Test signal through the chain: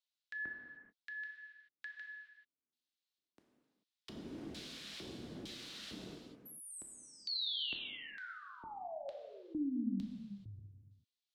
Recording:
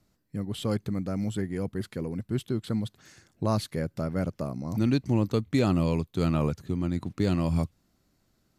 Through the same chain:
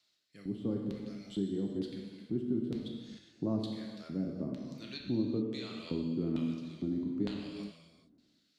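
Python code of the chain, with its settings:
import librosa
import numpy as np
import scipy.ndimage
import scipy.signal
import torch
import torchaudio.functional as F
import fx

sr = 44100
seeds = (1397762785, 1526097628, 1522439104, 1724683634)

y = fx.rotary(x, sr, hz=1.1)
y = fx.filter_lfo_bandpass(y, sr, shape='square', hz=1.1, low_hz=260.0, high_hz=3800.0, q=2.6)
y = fx.rev_gated(y, sr, seeds[0], gate_ms=460, shape='falling', drr_db=0.0)
y = fx.band_squash(y, sr, depth_pct=40)
y = y * 10.0 ** (1.0 / 20.0)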